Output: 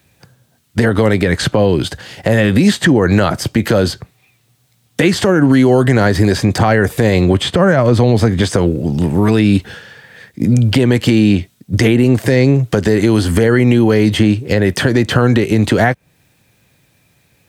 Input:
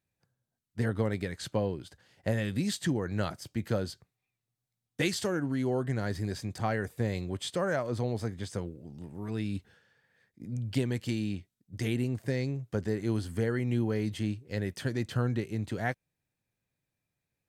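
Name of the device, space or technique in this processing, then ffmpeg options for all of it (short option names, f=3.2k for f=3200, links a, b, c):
mastering chain: -filter_complex "[0:a]asplit=3[a][b][c];[a]afade=t=out:st=7.33:d=0.02[d];[b]bass=f=250:g=9,treble=f=4k:g=-5,afade=t=in:st=7.33:d=0.02,afade=t=out:st=8.4:d=0.02[e];[c]afade=t=in:st=8.4:d=0.02[f];[d][e][f]amix=inputs=3:normalize=0,highpass=43,equalizer=f=3.1k:t=o:w=0.8:g=3,acrossover=split=240|2000[g][h][i];[g]acompressor=threshold=-40dB:ratio=4[j];[h]acompressor=threshold=-34dB:ratio=4[k];[i]acompressor=threshold=-52dB:ratio=4[l];[j][k][l]amix=inputs=3:normalize=0,acompressor=threshold=-37dB:ratio=2,alimiter=level_in=30.5dB:limit=-1dB:release=50:level=0:latency=1,volume=-1dB"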